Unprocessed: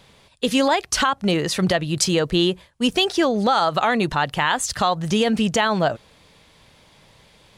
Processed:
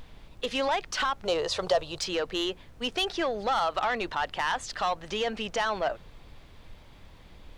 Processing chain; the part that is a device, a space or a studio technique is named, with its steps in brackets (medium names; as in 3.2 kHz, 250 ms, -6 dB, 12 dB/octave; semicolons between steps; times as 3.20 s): aircraft cabin announcement (band-pass 460–4100 Hz; saturation -15.5 dBFS, distortion -13 dB; brown noise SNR 16 dB); 1.25–1.99 s: graphic EQ 125/250/500/1000/2000/4000/8000 Hz +8/-12/+8/+6/-8/+4/+6 dB; trim -4.5 dB